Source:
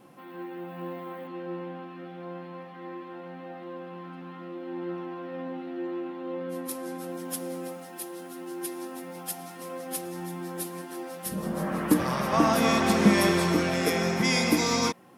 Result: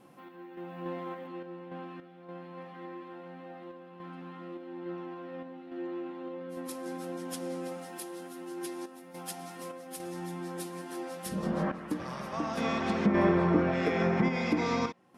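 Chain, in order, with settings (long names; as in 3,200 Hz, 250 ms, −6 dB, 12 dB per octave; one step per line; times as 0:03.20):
sample-and-hold tremolo, depth 75%
treble cut that deepens with the level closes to 1,400 Hz, closed at −21.5 dBFS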